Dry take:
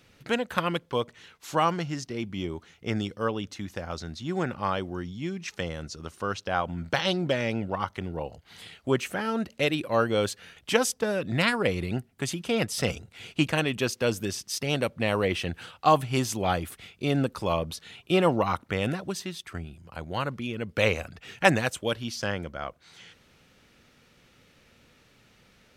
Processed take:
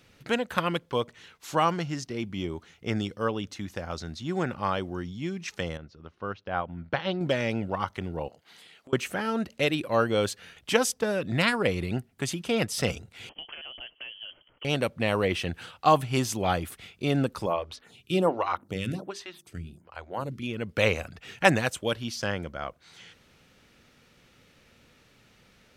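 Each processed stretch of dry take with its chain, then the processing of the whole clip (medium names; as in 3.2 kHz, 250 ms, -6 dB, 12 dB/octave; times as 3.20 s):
5.77–7.21 s: distance through air 280 m + upward expansion, over -38 dBFS
8.28–8.93 s: high-pass 230 Hz + compression 5:1, threshold -49 dBFS
13.29–14.65 s: compression 8:1, threshold -37 dBFS + distance through air 230 m + frequency inversion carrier 3.2 kHz
17.46–20.43 s: hum notches 50/100/150/200/250/300/350/400 Hz + lamp-driven phase shifter 1.3 Hz
whole clip: none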